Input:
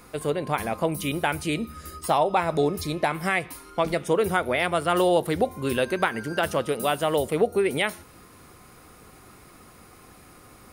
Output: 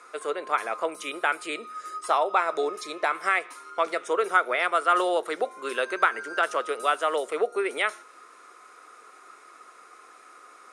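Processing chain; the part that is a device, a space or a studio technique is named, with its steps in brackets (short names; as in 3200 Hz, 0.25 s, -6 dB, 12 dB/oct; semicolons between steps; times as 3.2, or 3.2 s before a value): 1.1–1.63 notch 6000 Hz, Q 5.5; phone speaker on a table (speaker cabinet 420–8500 Hz, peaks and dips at 550 Hz -4 dB, 820 Hz -5 dB, 1300 Hz +9 dB, 3000 Hz -4 dB, 4600 Hz -6 dB)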